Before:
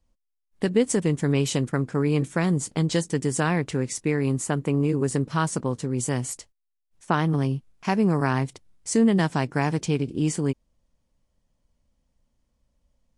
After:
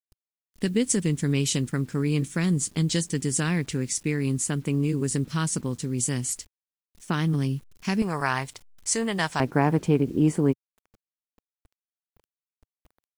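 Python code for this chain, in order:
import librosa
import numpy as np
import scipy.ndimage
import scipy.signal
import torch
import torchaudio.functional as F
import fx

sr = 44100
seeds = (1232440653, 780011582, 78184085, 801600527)

y = fx.peak_eq(x, sr, hz=fx.steps((0.0, 750.0), (8.02, 260.0), (9.4, 5500.0)), db=-15.0, octaves=2.3)
y = fx.quant_dither(y, sr, seeds[0], bits=10, dither='none')
y = fx.peak_eq(y, sr, hz=120.0, db=-4.5, octaves=0.8)
y = y * 10.0 ** (4.5 / 20.0)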